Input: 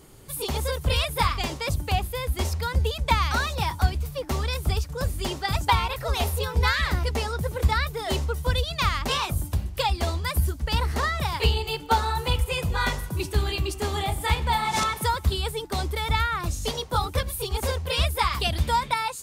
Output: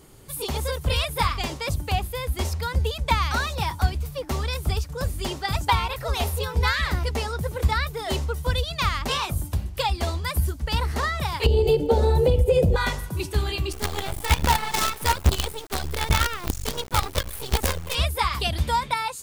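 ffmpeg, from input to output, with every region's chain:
-filter_complex "[0:a]asettb=1/sr,asplit=3[a][b][c];[a]atrim=end=11.464[d];[b]atrim=start=11.46:end=12.76,asetpts=PTS-STARTPTS,afade=t=in:d=0.004:c=qsin,afade=t=out:st=1.296:d=0.004:c=qsin,lowshelf=f=780:t=q:w=3:g=13,acompressor=threshold=-14dB:ratio=10:attack=3.2:release=140:knee=1:detection=peak[e];[c]atrim=start=12.756[f];[d][e]acrossfade=d=0.004:c1=hsin:c2=qsin[g];[g][f]acrossfade=d=0.004:c1=qsin:c2=hsin,asettb=1/sr,asplit=3[h][i][j];[h]atrim=end=13.724[k];[i]atrim=start=13.72:end=17.95,asetpts=PTS-STARTPTS,afade=t=in:d=0.004:c=qsin,afade=t=out:st=4.226:d=0.004:c=qsin,aphaser=in_gain=1:out_gain=1:delay=3.1:decay=0.38:speed=1.3:type=sinusoidal,acrusher=bits=4:dc=4:mix=0:aa=0.000001[l];[j]atrim=start=17.946[m];[k][l]acrossfade=d=0.004:c1=hsin:c2=qsin[n];[n][m]acrossfade=d=0.004:c1=qsin:c2=hsin"

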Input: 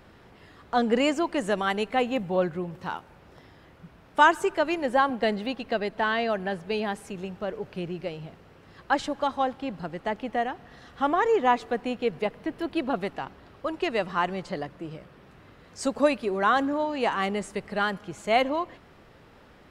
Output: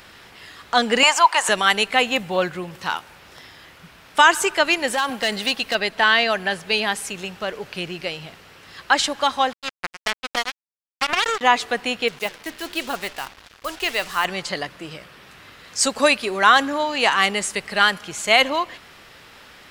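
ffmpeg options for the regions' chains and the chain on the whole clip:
-filter_complex "[0:a]asettb=1/sr,asplit=3[a][b][c];[a]atrim=end=1.034[d];[b]atrim=start=1.03:end=1.49,asetpts=PTS-STARTPTS,afade=t=in:d=0.004:c=qsin,afade=t=out:st=0.456:d=0.004:c=qsin,highpass=f=910:t=q:w=5.1,acompressor=mode=upward:threshold=-27dB:ratio=2.5:attack=3.2:release=140:knee=2.83:detection=peak[e];[c]atrim=start=1.486[f];[d][e]acrossfade=d=0.004:c1=hsin:c2=qsin[g];[g][f]acrossfade=d=0.004:c1=qsin:c2=hsin,asettb=1/sr,asplit=3[h][i][j];[h]atrim=end=4.874[k];[i]atrim=start=4.87:end=5.75,asetpts=PTS-STARTPTS,afade=t=in:d=0.004:c=qsin,afade=t=out:st=0.876:d=0.004:c=qsin,highshelf=f=5.8k:g=7.5,acompressor=threshold=-23dB:ratio=10:attack=3.2:release=140:knee=1:detection=peak,asoftclip=type=hard:threshold=-22.5dB[l];[j]atrim=start=5.746[m];[k][l]acrossfade=d=0.004:c1=hsin:c2=qsin[n];[n][m]acrossfade=d=0.004:c1=qsin:c2=hsin,asettb=1/sr,asplit=3[o][p][q];[o]atrim=end=9.534[r];[p]atrim=start=9.53:end=11.41,asetpts=PTS-STARTPTS,afade=t=in:d=0.004:c=qsin,afade=t=out:st=1.876:d=0.004:c=qsin,equalizer=f=2.4k:t=o:w=1.1:g=-4,acompressor=threshold=-24dB:ratio=8:attack=3.2:release=140:knee=1:detection=peak,acrusher=bits=3:mix=0:aa=0.5[s];[q]atrim=start=11.406[t];[r][s]acrossfade=d=0.004:c1=hsin:c2=qsin[u];[u][t]acrossfade=d=0.004:c1=qsin:c2=hsin,asettb=1/sr,asplit=3[v][w][x];[v]atrim=end=12.084[y];[w]atrim=start=12.08:end=14.25,asetpts=PTS-STARTPTS,afade=t=in:d=0.004:c=qsin,afade=t=out:st=2.166:d=0.004:c=qsin,asubboost=boost=10:cutoff=62,flanger=delay=5.8:depth=8.2:regen=-89:speed=1:shape=sinusoidal,acrusher=bits=7:mix=0:aa=0.5[z];[x]atrim=start=14.246[aa];[y][z]acrossfade=d=0.004:c1=hsin:c2=qsin[ab];[ab][aa]acrossfade=d=0.004:c1=qsin:c2=hsin,tiltshelf=f=1.2k:g=-9.5,alimiter=level_in=10dB:limit=-1dB:release=50:level=0:latency=1,volume=-1dB"

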